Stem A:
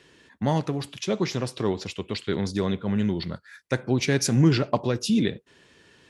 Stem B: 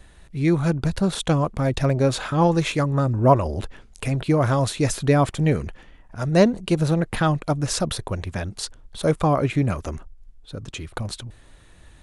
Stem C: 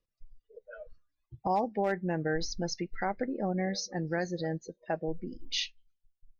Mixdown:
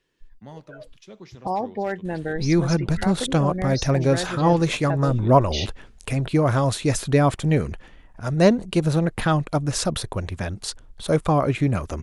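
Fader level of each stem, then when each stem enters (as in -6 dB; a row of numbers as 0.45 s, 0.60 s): -18.0 dB, 0.0 dB, +3.0 dB; 0.00 s, 2.05 s, 0.00 s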